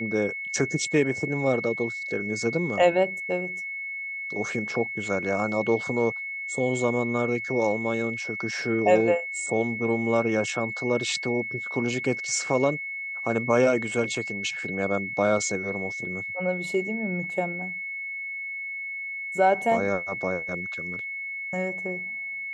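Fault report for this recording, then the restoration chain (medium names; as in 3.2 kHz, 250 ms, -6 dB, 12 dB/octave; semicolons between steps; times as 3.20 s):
whine 2.2 kHz -31 dBFS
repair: band-stop 2.2 kHz, Q 30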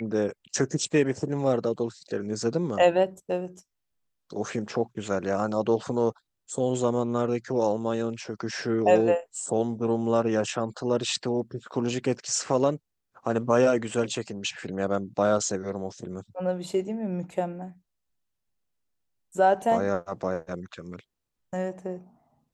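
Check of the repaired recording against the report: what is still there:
nothing left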